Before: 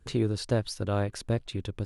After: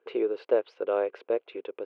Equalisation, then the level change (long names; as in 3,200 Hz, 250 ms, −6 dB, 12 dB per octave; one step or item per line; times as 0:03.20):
Chebyshev band-pass filter 380–2,700 Hz, order 3
parametric band 480 Hz +9.5 dB 0.61 octaves
notch filter 1,800 Hz, Q 9.1
0.0 dB